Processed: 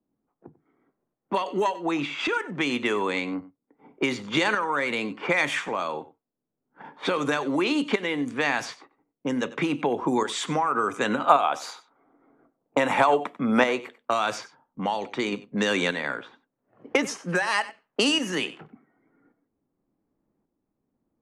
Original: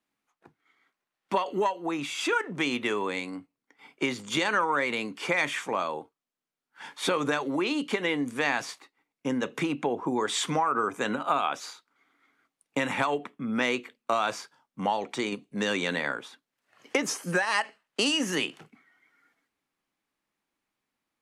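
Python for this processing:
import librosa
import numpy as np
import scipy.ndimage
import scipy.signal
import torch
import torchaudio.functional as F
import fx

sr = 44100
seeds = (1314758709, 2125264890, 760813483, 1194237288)

y = fx.peak_eq(x, sr, hz=710.0, db=10.5, octaves=1.9, at=(11.29, 14.0))
y = fx.env_lowpass(y, sr, base_hz=420.0, full_db=-24.0)
y = fx.tremolo_shape(y, sr, shape='saw_up', hz=0.88, depth_pct=55)
y = y + 10.0 ** (-18.5 / 20.0) * np.pad(y, (int(94 * sr / 1000.0), 0))[:len(y)]
y = fx.band_squash(y, sr, depth_pct=40)
y = y * librosa.db_to_amplitude(5.0)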